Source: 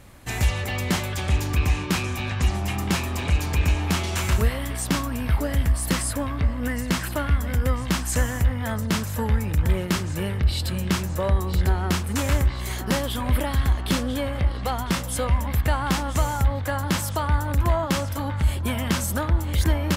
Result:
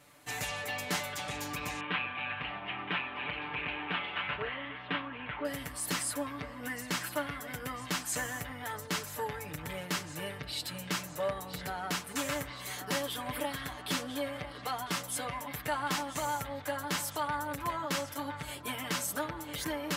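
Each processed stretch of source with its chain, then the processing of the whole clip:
1.8–5.45 steep low-pass 3200 Hz 48 dB/oct + tilt shelf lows -3.5 dB, about 750 Hz + Doppler distortion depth 0.24 ms
whole clip: HPF 470 Hz 6 dB/oct; comb 6.8 ms, depth 94%; gain -8.5 dB

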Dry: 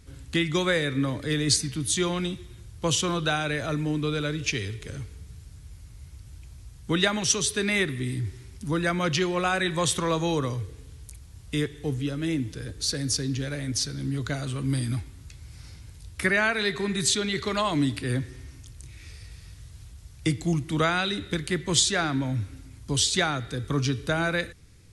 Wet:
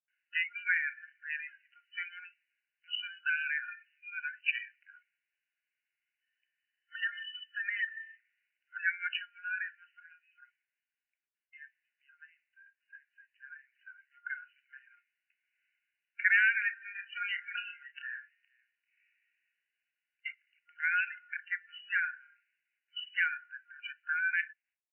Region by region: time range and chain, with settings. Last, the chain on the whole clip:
6.21–8.15 small resonant body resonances 1800/3000 Hz, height 15 dB, ringing for 35 ms + compressor 3:1, threshold -31 dBFS
9.17–13.72 high shelf 3100 Hz -6.5 dB + flange 1.1 Hz, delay 2.8 ms, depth 7.9 ms, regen -78%
16.81–18.76 doubler 31 ms -6 dB + echo 0.464 s -15 dB
whole clip: gate with hold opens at -42 dBFS; FFT band-pass 1400–3000 Hz; spectral noise reduction 20 dB

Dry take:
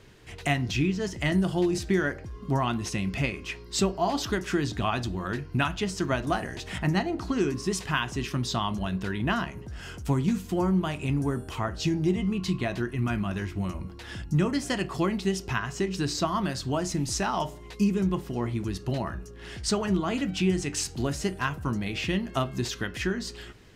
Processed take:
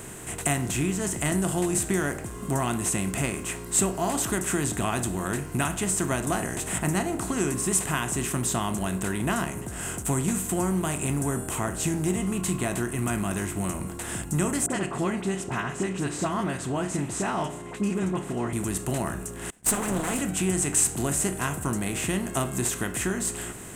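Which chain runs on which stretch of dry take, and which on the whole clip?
14.66–18.53 BPF 130–3100 Hz + dispersion highs, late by 42 ms, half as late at 1300 Hz
19.5–20.19 minimum comb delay 4 ms + gate -36 dBFS, range -42 dB
whole clip: per-bin compression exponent 0.6; resonant high shelf 6500 Hz +10.5 dB, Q 3; gain -4 dB

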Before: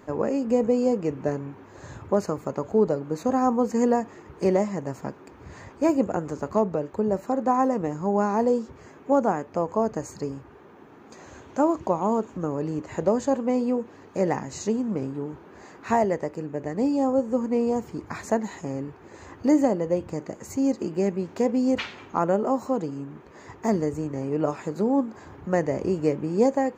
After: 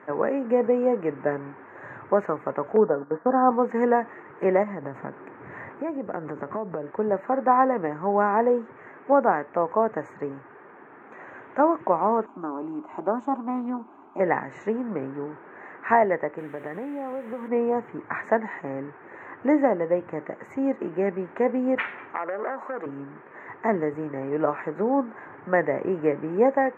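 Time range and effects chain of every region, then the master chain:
2.76–3.51 steep low-pass 1700 Hz 48 dB/oct + gate -35 dBFS, range -9 dB + comb 4.2 ms, depth 31%
4.63–6.91 low shelf 430 Hz +7 dB + compressor 5:1, threshold -27 dBFS
12.26–14.2 fixed phaser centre 490 Hz, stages 6 + Doppler distortion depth 0.15 ms
16.38–17.48 compressor 12:1, threshold -28 dBFS + requantised 8-bit, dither triangular
22.13–22.86 HPF 350 Hz + compressor 10:1, threshold -25 dBFS + core saturation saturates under 920 Hz
whole clip: elliptic band-pass 110–1900 Hz, stop band 40 dB; tilt +4 dB/oct; gain +5.5 dB

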